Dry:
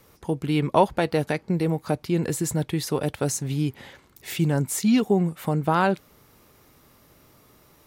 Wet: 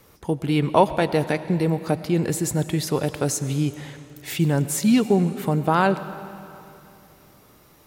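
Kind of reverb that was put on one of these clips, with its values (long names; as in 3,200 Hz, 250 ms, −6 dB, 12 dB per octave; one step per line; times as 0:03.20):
comb and all-pass reverb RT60 2.8 s, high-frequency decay 0.9×, pre-delay 60 ms, DRR 13 dB
level +2 dB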